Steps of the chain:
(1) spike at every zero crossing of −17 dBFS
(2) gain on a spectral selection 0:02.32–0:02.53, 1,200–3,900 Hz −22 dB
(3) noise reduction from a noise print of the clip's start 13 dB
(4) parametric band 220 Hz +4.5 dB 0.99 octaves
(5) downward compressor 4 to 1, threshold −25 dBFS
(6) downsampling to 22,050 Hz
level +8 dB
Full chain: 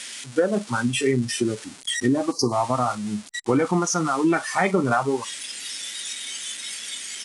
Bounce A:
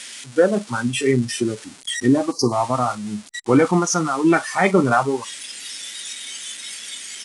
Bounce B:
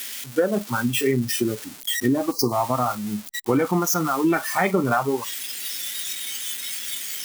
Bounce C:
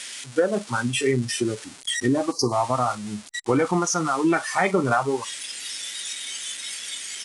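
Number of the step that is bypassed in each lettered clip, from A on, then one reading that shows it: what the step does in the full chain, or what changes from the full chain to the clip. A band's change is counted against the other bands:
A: 5, 4 kHz band −2.5 dB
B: 6, change in momentary loudness spread −2 LU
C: 4, 250 Hz band −2.0 dB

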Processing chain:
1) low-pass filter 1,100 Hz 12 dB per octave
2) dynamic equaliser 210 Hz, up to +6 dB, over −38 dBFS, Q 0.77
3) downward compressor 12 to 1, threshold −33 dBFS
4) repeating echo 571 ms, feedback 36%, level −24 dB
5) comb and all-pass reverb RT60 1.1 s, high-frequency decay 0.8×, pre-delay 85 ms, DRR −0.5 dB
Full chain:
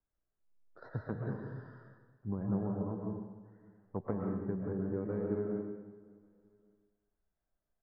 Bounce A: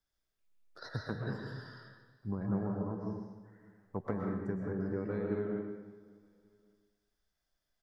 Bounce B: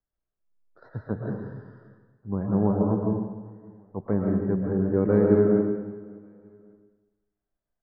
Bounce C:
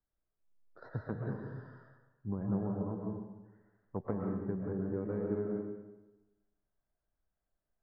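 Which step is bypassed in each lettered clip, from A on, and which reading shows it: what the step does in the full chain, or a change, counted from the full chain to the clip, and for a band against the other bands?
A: 1, 2 kHz band +7.0 dB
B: 3, average gain reduction 10.5 dB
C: 4, change in momentary loudness spread −4 LU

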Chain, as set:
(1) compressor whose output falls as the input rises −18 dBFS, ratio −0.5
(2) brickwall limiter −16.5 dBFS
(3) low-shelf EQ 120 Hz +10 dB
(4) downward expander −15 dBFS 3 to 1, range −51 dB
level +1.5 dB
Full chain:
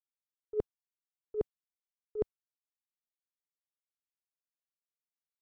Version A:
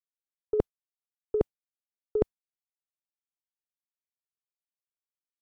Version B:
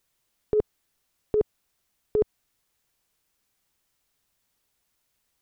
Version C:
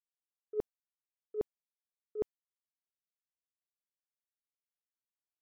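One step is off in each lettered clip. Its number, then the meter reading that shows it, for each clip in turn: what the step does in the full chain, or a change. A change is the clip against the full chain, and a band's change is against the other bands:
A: 2, average gain reduction 2.5 dB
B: 4, change in integrated loudness +10.5 LU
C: 3, 125 Hz band −4.0 dB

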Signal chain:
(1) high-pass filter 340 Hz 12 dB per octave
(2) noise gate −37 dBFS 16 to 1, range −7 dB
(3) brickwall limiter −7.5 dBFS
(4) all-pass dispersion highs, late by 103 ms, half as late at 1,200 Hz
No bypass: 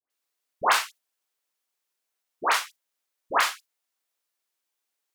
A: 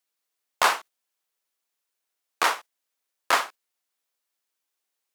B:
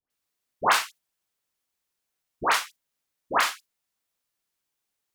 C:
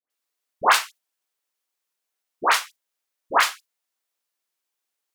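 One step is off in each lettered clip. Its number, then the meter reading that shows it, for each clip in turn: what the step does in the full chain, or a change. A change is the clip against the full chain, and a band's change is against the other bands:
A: 4, change in momentary loudness spread −5 LU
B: 1, 250 Hz band +4.5 dB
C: 3, change in momentary loudness spread −4 LU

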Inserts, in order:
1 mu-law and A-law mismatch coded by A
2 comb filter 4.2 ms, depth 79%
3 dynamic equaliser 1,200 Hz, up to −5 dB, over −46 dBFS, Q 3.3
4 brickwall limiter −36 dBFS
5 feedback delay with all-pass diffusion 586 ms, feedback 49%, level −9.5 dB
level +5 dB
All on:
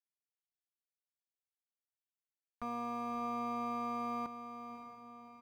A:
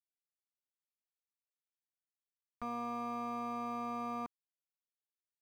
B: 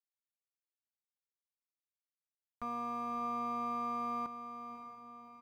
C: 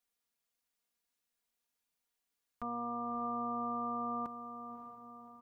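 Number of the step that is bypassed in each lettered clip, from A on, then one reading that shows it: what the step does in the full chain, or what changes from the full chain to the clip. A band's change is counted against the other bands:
5, echo-to-direct ratio −8.5 dB to none audible
3, change in integrated loudness +1.0 LU
1, distortion level −18 dB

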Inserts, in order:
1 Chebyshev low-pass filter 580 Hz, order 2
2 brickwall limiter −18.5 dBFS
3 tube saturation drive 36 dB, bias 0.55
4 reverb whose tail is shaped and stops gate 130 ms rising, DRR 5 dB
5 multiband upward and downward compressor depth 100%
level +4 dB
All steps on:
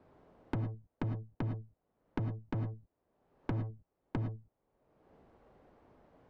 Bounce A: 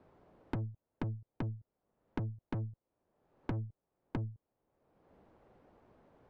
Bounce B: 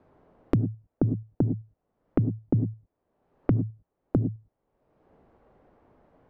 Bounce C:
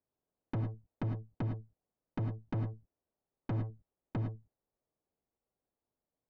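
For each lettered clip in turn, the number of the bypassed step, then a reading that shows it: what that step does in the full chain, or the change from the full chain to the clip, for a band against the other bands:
4, change in momentary loudness spread −2 LU
3, 1 kHz band −10.0 dB
5, change in crest factor −6.0 dB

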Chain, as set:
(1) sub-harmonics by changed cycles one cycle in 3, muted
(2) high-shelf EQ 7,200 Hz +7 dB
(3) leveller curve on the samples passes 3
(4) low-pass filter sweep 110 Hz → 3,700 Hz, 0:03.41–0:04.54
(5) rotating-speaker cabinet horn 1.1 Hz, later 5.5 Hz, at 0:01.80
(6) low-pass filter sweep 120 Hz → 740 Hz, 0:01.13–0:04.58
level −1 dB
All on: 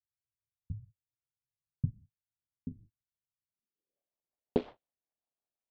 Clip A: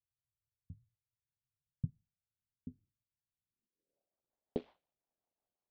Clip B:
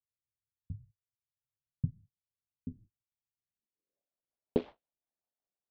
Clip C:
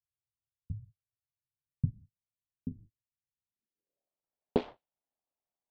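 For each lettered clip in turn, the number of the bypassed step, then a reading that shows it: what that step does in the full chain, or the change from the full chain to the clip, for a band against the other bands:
3, 1 kHz band −4.0 dB
2, 1 kHz band −4.0 dB
5, 1 kHz band +3.5 dB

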